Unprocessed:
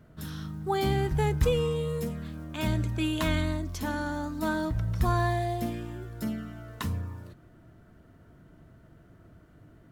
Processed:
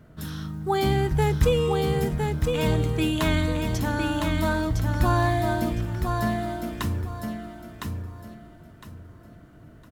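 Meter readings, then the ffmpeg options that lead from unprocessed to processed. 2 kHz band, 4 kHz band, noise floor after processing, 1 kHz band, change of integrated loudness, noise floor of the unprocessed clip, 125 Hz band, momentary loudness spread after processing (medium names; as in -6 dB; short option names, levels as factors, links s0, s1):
+5.5 dB, +5.5 dB, -49 dBFS, +5.5 dB, +5.0 dB, -56 dBFS, +5.5 dB, 15 LU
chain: -af "aecho=1:1:1009|2018|3027|4036:0.596|0.155|0.0403|0.0105,volume=1.58"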